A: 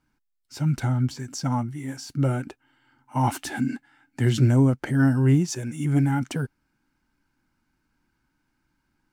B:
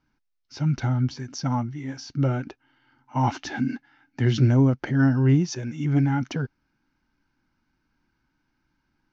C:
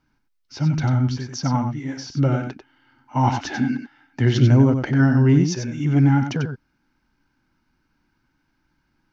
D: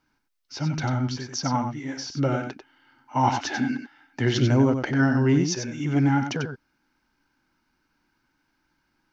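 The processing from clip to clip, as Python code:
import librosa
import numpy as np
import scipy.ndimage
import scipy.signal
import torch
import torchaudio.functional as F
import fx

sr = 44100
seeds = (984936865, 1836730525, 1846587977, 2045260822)

y1 = scipy.signal.sosfilt(scipy.signal.butter(12, 6300.0, 'lowpass', fs=sr, output='sos'), x)
y2 = y1 + 10.0 ** (-7.0 / 20.0) * np.pad(y1, (int(94 * sr / 1000.0), 0))[:len(y1)]
y2 = y2 * librosa.db_to_amplitude(3.5)
y3 = fx.bass_treble(y2, sr, bass_db=-8, treble_db=2)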